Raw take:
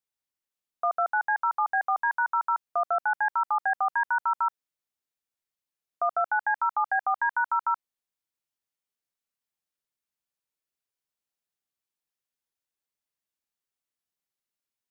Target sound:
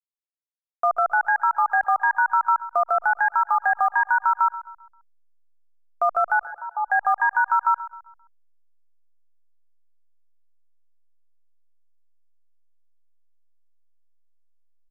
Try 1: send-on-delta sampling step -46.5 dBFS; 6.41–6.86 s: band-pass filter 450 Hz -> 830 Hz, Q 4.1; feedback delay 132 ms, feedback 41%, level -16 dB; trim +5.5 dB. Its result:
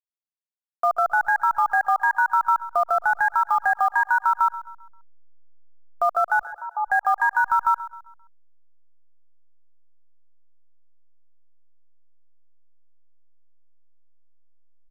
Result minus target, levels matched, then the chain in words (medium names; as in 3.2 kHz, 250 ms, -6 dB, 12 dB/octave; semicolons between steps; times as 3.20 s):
send-on-delta sampling: distortion +9 dB
send-on-delta sampling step -54 dBFS; 6.41–6.86 s: band-pass filter 450 Hz -> 830 Hz, Q 4.1; feedback delay 132 ms, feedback 41%, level -16 dB; trim +5.5 dB